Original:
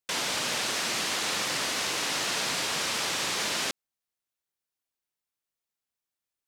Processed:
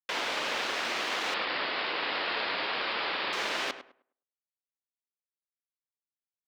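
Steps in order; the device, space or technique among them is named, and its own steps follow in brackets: phone line with mismatched companding (BPF 310–3200 Hz; G.711 law mismatch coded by A); notches 50/100/150/200/250 Hz; 1.34–3.33 steep low-pass 5000 Hz 96 dB/oct; tape echo 0.102 s, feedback 26%, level -10 dB, low-pass 2000 Hz; gain +2.5 dB

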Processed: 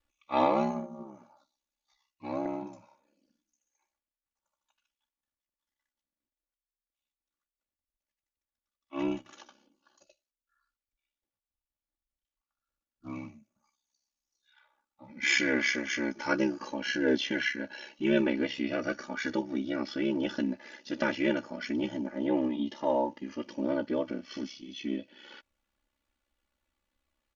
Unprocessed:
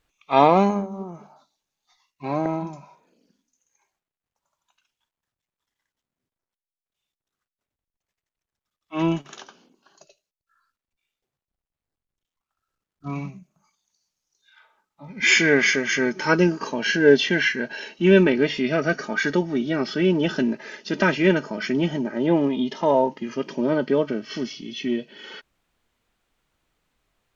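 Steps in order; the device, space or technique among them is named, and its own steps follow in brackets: ring-modulated robot voice (ring modulator 33 Hz; comb 3.5 ms, depth 76%); gain -8.5 dB

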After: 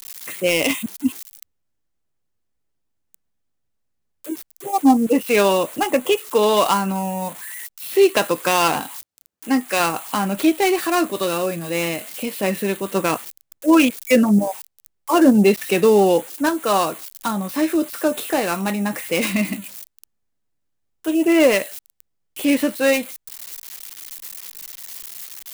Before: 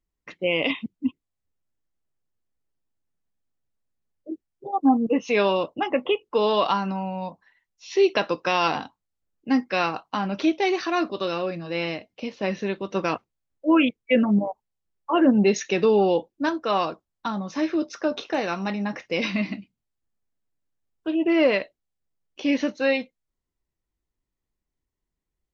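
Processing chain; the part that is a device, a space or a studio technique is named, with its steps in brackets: budget class-D amplifier (switching dead time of 0.098 ms; switching spikes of -24.5 dBFS); 8.8–9.79 HPF 92 Hz -> 340 Hz 6 dB/oct; gain +5 dB

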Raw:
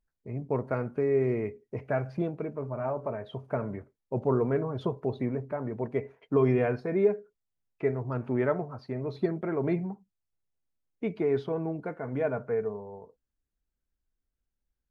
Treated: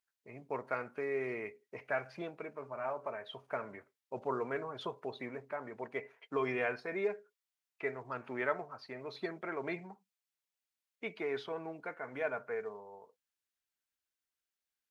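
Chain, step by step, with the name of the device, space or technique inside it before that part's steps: filter by subtraction (in parallel: LPF 2300 Hz 12 dB/oct + phase invert); on the sum: gain +1.5 dB

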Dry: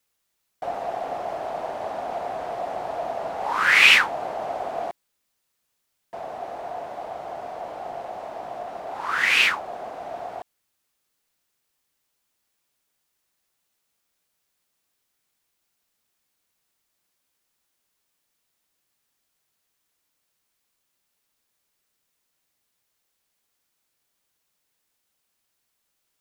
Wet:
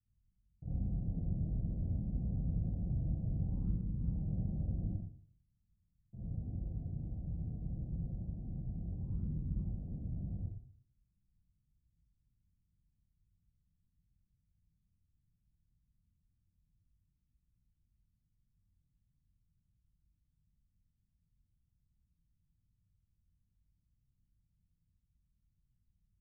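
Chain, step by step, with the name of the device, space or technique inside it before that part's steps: club heard from the street (limiter -12.5 dBFS, peak gain reduction 9.5 dB; LPF 130 Hz 24 dB/oct; reverb RT60 0.50 s, pre-delay 46 ms, DRR -7 dB); gain +13 dB

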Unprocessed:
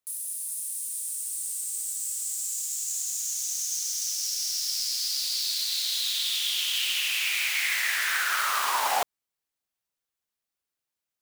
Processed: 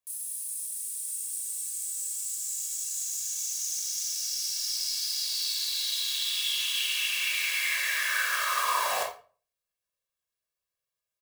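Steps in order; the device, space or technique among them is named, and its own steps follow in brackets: microphone above a desk (comb 1.8 ms, depth 78%; reverb RT60 0.40 s, pre-delay 19 ms, DRR 0.5 dB); gain -6 dB

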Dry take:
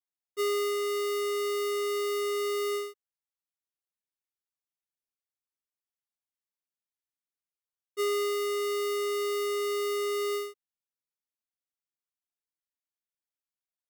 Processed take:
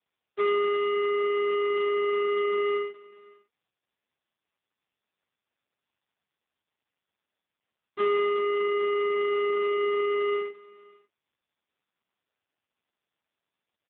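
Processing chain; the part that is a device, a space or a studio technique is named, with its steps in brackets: dynamic EQ 3700 Hz, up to +4 dB, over -57 dBFS, Q 5; satellite phone (BPF 330–3200 Hz; echo 0.553 s -22 dB; gain +6 dB; AMR-NB 4.75 kbps 8000 Hz)

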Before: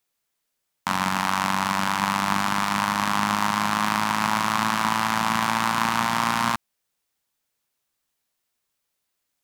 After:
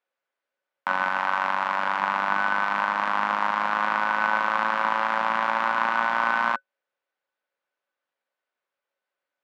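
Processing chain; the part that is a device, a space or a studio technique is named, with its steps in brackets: 1.02–1.85 low shelf 140 Hz -9 dB; tin-can telephone (BPF 420–2100 Hz; small resonant body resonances 550/1500 Hz, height 12 dB, ringing for 90 ms)

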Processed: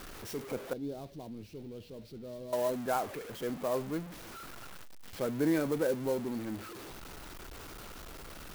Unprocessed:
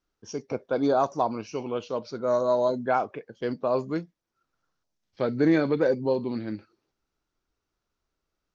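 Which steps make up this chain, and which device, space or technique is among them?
early CD player with a faulty converter (zero-crossing step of -31 dBFS; clock jitter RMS 0.035 ms); 0.73–2.53 EQ curve 120 Hz 0 dB, 190 Hz -4 dB, 400 Hz -8 dB, 1100 Hz -24 dB, 4100 Hz -9 dB, 7300 Hz -18 dB; gain -8.5 dB

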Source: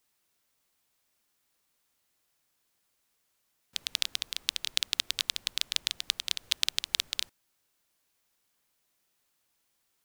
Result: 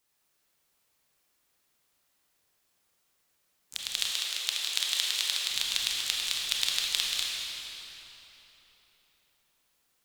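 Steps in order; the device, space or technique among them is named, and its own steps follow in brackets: shimmer-style reverb (harmoniser +12 st -11 dB; reverb RT60 3.8 s, pre-delay 25 ms, DRR -3.5 dB); 4.11–5.51 steep high-pass 320 Hz 48 dB/oct; gain -2 dB

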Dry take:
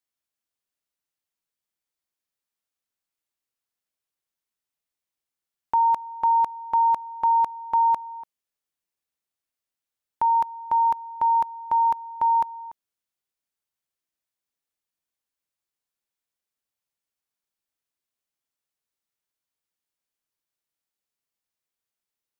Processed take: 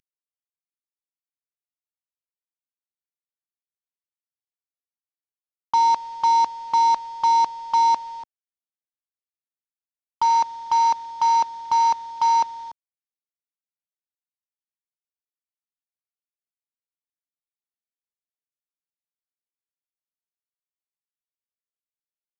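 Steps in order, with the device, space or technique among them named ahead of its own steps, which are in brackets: early wireless headset (HPF 200 Hz 6 dB/oct; CVSD 32 kbps); gain +2.5 dB

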